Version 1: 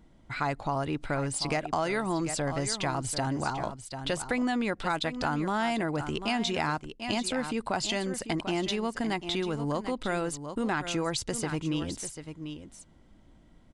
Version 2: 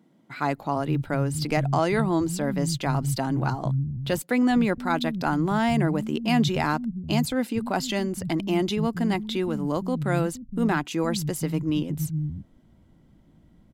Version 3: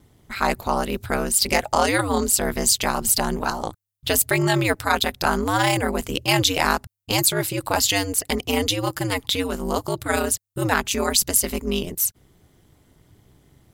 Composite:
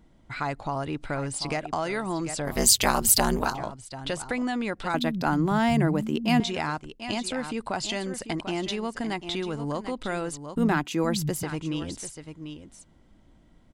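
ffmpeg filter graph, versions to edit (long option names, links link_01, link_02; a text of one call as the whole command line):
ffmpeg -i take0.wav -i take1.wav -i take2.wav -filter_complex "[1:a]asplit=2[link_01][link_02];[0:a]asplit=4[link_03][link_04][link_05][link_06];[link_03]atrim=end=2.6[link_07];[2:a]atrim=start=2.44:end=3.59[link_08];[link_04]atrim=start=3.43:end=4.942[link_09];[link_01]atrim=start=4.938:end=6.402[link_10];[link_05]atrim=start=6.398:end=10.572[link_11];[link_02]atrim=start=10.568:end=11.432[link_12];[link_06]atrim=start=11.428[link_13];[link_07][link_08]acrossfade=duration=0.16:curve1=tri:curve2=tri[link_14];[link_14][link_09]acrossfade=duration=0.16:curve1=tri:curve2=tri[link_15];[link_15][link_10]acrossfade=duration=0.004:curve1=hsin:curve2=hsin[link_16];[link_16][link_11]acrossfade=duration=0.004:curve1=hsin:curve2=hsin[link_17];[link_17][link_12]acrossfade=duration=0.004:curve1=hsin:curve2=hsin[link_18];[link_18][link_13]acrossfade=duration=0.004:curve1=hsin:curve2=hsin" out.wav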